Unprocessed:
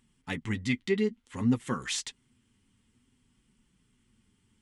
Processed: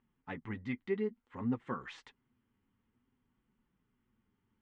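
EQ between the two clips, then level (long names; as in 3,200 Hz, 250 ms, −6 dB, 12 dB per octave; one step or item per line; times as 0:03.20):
low-pass filter 1,200 Hz 12 dB per octave
low-shelf EQ 440 Hz −11 dB
0.0 dB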